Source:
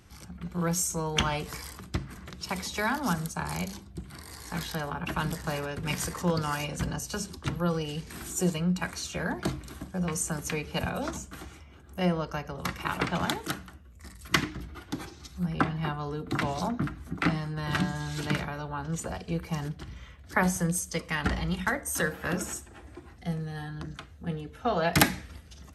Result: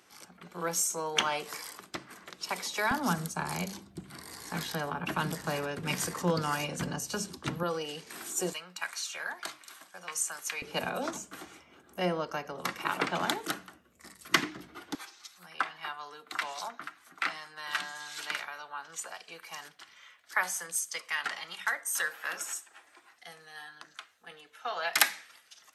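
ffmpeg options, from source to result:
-af "asetnsamples=n=441:p=0,asendcmd='2.91 highpass f 170;7.63 highpass f 390;8.53 highpass f 1100;10.62 highpass f 280;14.95 highpass f 1100',highpass=410"

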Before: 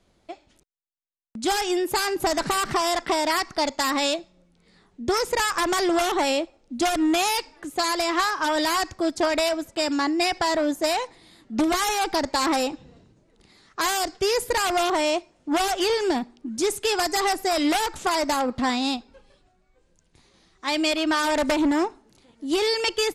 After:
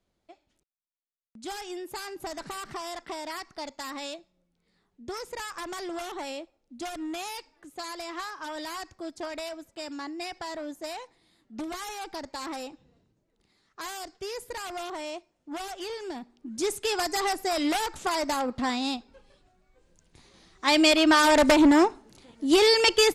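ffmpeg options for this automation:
-af "volume=1.5,afade=t=in:st=16.16:d=0.49:silence=0.354813,afade=t=in:st=18.94:d=1.8:silence=0.398107"

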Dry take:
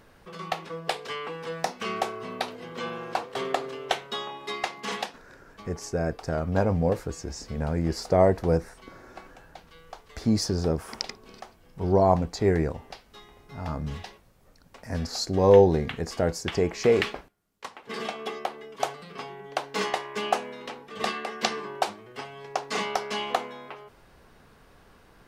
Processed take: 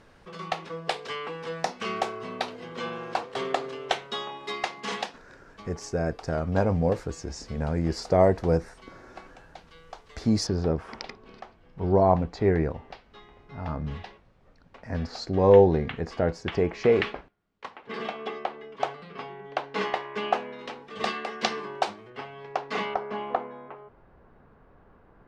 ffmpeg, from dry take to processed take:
-af "asetnsamples=n=441:p=0,asendcmd='10.47 lowpass f 3200;20.59 lowpass f 5900;22.1 lowpass f 3100;22.94 lowpass f 1300',lowpass=7600"

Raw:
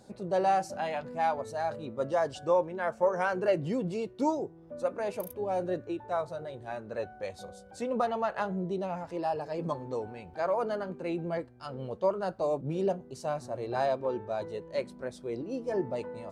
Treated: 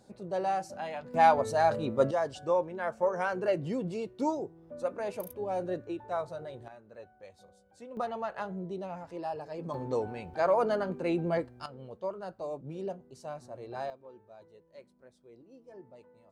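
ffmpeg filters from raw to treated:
-af "asetnsamples=n=441:p=0,asendcmd='1.14 volume volume 7dB;2.11 volume volume -2dB;6.68 volume volume -13.5dB;7.97 volume volume -5dB;9.74 volume volume 3.5dB;11.66 volume volume -8dB;13.9 volume volume -19.5dB',volume=0.596"

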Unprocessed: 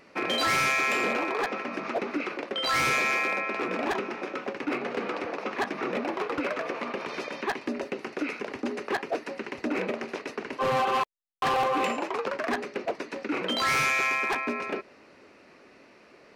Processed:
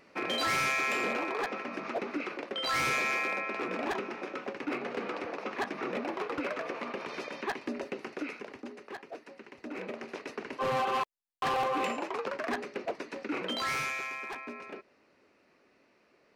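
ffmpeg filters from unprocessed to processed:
-af "volume=1.78,afade=t=out:st=8.04:d=0.71:silence=0.334965,afade=t=in:st=9.58:d=0.75:silence=0.334965,afade=t=out:st=13.37:d=0.71:silence=0.421697"

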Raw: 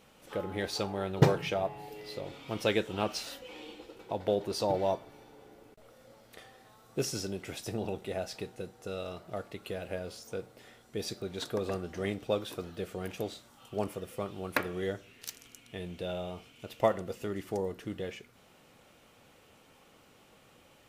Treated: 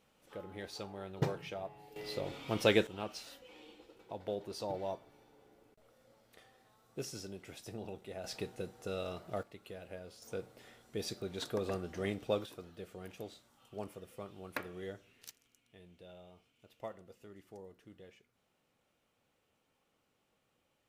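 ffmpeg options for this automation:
-af "asetnsamples=n=441:p=0,asendcmd='1.96 volume volume 1dB;2.87 volume volume -9.5dB;8.24 volume volume -1dB;9.43 volume volume -10dB;10.22 volume volume -3dB;12.46 volume volume -10dB;15.31 volume volume -18dB',volume=0.282"

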